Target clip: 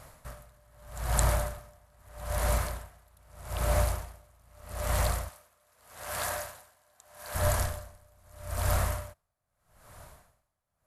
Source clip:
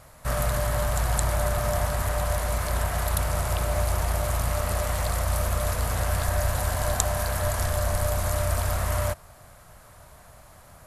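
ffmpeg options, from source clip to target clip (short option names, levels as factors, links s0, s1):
-filter_complex "[0:a]asettb=1/sr,asplit=3[s0][s1][s2];[s0]atrim=end=5.294[s3];[s1]atrim=start=5.29:end=7.35,asetpts=PTS-STARTPTS,afade=t=in:d=0.004:c=qsin,afade=t=out:st=2.056:d=0.004:c=qsin,highpass=f=660:p=1[s4];[s2]atrim=start=7.346[s5];[s3][s4]acrossfade=d=0.004:c1=hsin:c2=qsin[s6];[s6][s5]acrossfade=d=0.004:c1=qsin:c2=hsin,aeval=exprs='val(0)*pow(10,-36*(0.5-0.5*cos(2*PI*0.8*n/s))/20)':c=same"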